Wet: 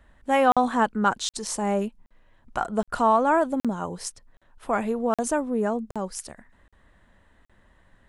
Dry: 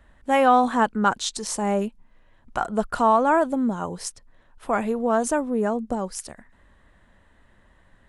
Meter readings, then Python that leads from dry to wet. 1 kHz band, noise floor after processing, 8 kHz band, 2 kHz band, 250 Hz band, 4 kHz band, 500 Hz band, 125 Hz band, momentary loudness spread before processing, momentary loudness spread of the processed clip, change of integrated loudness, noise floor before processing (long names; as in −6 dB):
−2.0 dB, −62 dBFS, −1.5 dB, −1.5 dB, −2.0 dB, −1.5 dB, −2.0 dB, −1.5 dB, 15 LU, 14 LU, −2.0 dB, −58 dBFS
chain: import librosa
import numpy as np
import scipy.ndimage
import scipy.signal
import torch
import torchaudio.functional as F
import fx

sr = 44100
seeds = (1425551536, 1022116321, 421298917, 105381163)

y = fx.buffer_crackle(x, sr, first_s=0.52, period_s=0.77, block=2048, kind='zero')
y = y * 10.0 ** (-1.5 / 20.0)